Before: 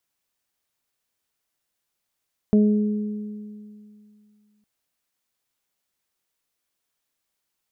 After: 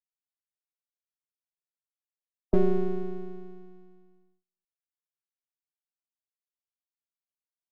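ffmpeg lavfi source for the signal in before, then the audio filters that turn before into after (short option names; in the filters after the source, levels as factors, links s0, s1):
-f lavfi -i "aevalsrc='0.237*pow(10,-3*t/2.48)*sin(2*PI*210*t)+0.0944*pow(10,-3*t/1.88)*sin(2*PI*420*t)+0.0299*pow(10,-3*t/0.56)*sin(2*PI*630*t)':d=2.11:s=44100"
-filter_complex "[0:a]afreqshift=-27,afftdn=nr=33:nf=-38,acrossover=split=240[s0][s1];[s0]aeval=exprs='abs(val(0))':c=same[s2];[s2][s1]amix=inputs=2:normalize=0"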